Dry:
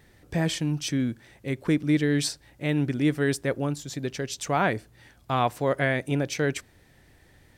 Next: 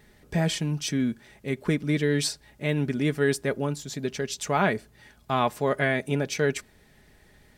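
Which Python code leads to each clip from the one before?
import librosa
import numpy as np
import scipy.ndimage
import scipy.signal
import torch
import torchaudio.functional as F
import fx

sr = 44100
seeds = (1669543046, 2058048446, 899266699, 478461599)

y = x + 0.46 * np.pad(x, (int(4.8 * sr / 1000.0), 0))[:len(x)]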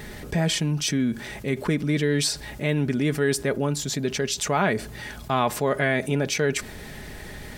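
y = fx.env_flatten(x, sr, amount_pct=50)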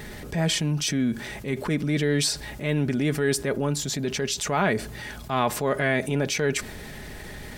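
y = fx.transient(x, sr, attack_db=-5, sustain_db=1)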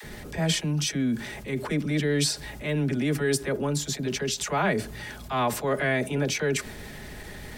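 y = fx.dispersion(x, sr, late='lows', ms=40.0, hz=450.0)
y = y * librosa.db_to_amplitude(-1.5)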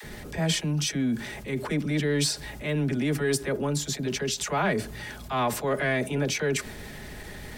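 y = 10.0 ** (-13.5 / 20.0) * np.tanh(x / 10.0 ** (-13.5 / 20.0))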